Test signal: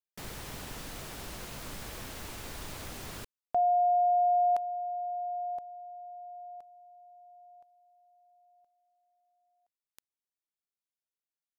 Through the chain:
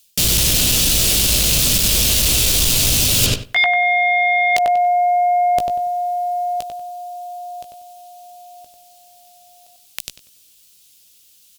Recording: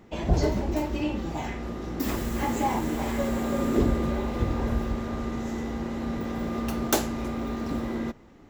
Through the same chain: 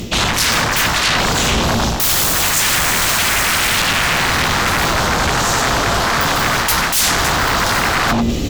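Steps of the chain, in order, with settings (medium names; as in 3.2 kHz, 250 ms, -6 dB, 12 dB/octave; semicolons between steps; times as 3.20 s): high-order bell 1.3 kHz -13.5 dB; hard clipper -23.5 dBFS; doubling 17 ms -8.5 dB; on a send: filtered feedback delay 95 ms, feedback 29%, low-pass 2.8 kHz, level -4.5 dB; on the sum: sine folder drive 18 dB, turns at -15.5 dBFS; amplifier tone stack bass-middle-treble 5-5-5; reverse; compression 6:1, threshold -41 dBFS; reverse; loudness maximiser +28.5 dB; trim -1 dB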